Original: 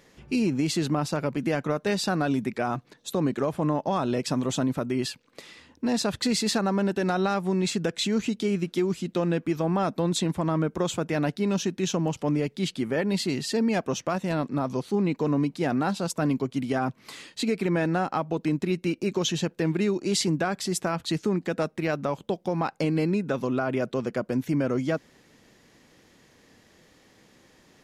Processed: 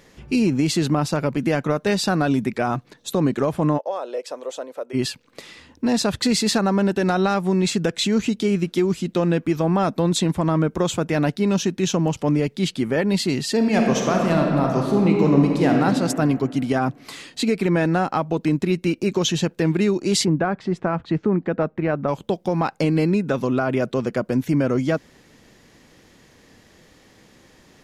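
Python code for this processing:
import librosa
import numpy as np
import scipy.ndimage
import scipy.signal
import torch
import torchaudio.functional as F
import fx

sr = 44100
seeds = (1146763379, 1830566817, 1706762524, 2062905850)

y = fx.ladder_highpass(x, sr, hz=460.0, resonance_pct=65, at=(3.77, 4.93), fade=0.02)
y = fx.reverb_throw(y, sr, start_s=13.55, length_s=2.26, rt60_s=2.3, drr_db=0.5)
y = fx.lowpass(y, sr, hz=1700.0, slope=12, at=(20.24, 22.07), fade=0.02)
y = fx.low_shelf(y, sr, hz=77.0, db=6.5)
y = y * librosa.db_to_amplitude(5.0)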